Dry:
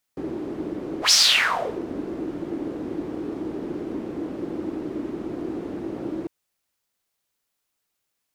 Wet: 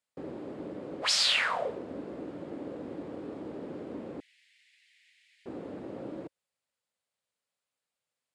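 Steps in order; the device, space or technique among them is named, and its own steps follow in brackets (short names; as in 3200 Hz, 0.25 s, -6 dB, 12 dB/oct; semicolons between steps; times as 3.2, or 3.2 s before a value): car door speaker (speaker cabinet 82–9400 Hz, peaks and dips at 340 Hz -7 dB, 540 Hz +7 dB, 5900 Hz -7 dB); 4.2–5.46 steep high-pass 1900 Hz 72 dB/oct; gain -7.5 dB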